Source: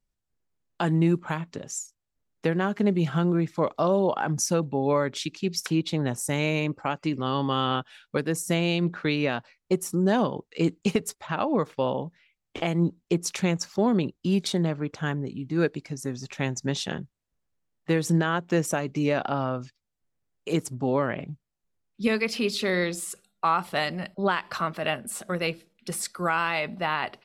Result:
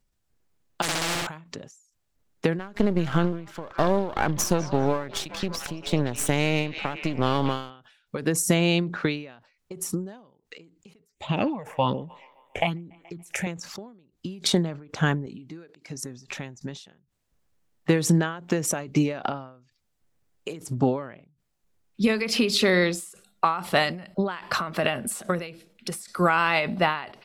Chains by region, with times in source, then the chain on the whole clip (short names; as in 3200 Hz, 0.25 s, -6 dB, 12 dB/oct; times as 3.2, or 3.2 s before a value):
0.82–1.27 overloaded stage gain 27.5 dB + flutter echo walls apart 11.2 m, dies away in 1.1 s + spectral compressor 4:1
2.59–7.7 half-wave gain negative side -12 dB + delay with a stepping band-pass 0.198 s, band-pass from 3800 Hz, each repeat -0.7 oct, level -9 dB
11.07–13.47 phaser stages 6, 1.2 Hz, lowest notch 280–1600 Hz + band-limited delay 0.142 s, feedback 59%, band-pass 1400 Hz, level -19 dB
15.26–16.03 HPF 210 Hz 6 dB/oct + upward expander, over -33 dBFS
whole clip: compressor, threshold -25 dBFS; ending taper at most 100 dB/s; gain +9 dB